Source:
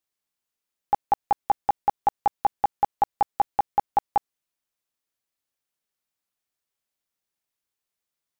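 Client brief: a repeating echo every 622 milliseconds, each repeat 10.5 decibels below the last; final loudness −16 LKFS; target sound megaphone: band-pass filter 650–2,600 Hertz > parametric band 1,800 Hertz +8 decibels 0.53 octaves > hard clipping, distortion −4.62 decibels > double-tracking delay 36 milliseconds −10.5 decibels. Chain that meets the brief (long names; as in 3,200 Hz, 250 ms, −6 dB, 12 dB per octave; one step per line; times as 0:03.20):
band-pass filter 650–2,600 Hz
parametric band 1,800 Hz +8 dB 0.53 octaves
repeating echo 622 ms, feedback 30%, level −10.5 dB
hard clipping −26.5 dBFS
double-tracking delay 36 ms −10.5 dB
level +19.5 dB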